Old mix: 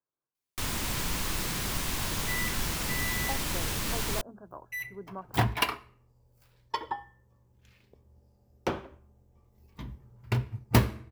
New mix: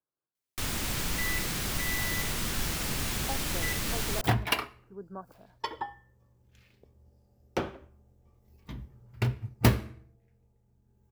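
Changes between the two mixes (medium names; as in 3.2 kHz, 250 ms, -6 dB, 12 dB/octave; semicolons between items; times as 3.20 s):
second sound: entry -1.10 s; master: add peaking EQ 1 kHz -5 dB 0.25 oct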